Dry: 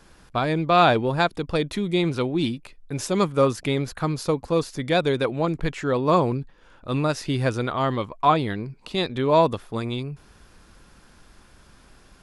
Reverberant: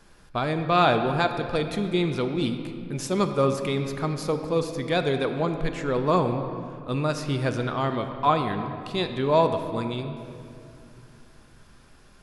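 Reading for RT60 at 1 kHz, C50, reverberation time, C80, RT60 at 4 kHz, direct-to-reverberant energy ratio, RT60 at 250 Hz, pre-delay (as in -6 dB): 2.4 s, 7.5 dB, 2.6 s, 8.5 dB, 1.6 s, 6.5 dB, 3.6 s, 5 ms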